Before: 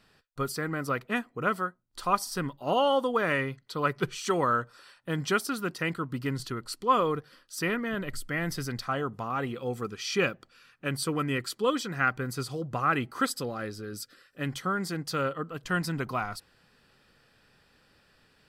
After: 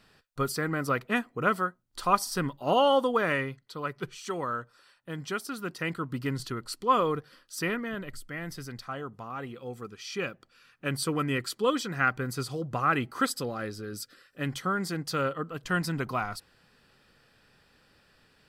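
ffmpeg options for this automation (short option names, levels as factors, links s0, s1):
-af "volume=5.96,afade=t=out:st=3:d=0.83:silence=0.375837,afade=t=in:st=5.36:d=0.75:silence=0.473151,afade=t=out:st=7.55:d=0.65:silence=0.473151,afade=t=in:st=10.25:d=0.66:silence=0.446684"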